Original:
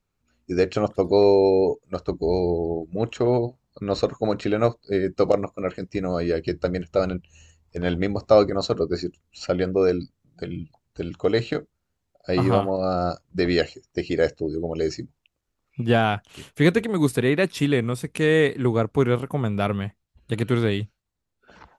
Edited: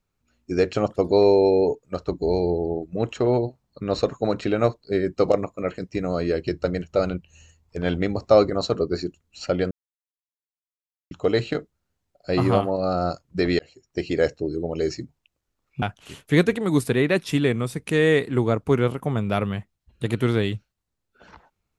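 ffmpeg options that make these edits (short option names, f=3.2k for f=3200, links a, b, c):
-filter_complex "[0:a]asplit=5[a][b][c][d][e];[a]atrim=end=9.71,asetpts=PTS-STARTPTS,afade=t=out:st=9.706:d=0.004:c=hsin[f];[b]atrim=start=9.71:end=11.11,asetpts=PTS-STARTPTS,volume=0[g];[c]atrim=start=11.11:end=13.59,asetpts=PTS-STARTPTS,afade=t=in:d=0.004:c=hsin,afade=t=out:st=2.476:d=0.004:c=hsin[h];[d]atrim=start=13.59:end=15.822,asetpts=PTS-STARTPTS,afade=t=in:d=0.42[i];[e]atrim=start=16.098[j];[f][g][h][i]concat=n=4:v=0:a=1[k];[k][j]acrossfade=d=0.004:c1=hsin:c2=hsin"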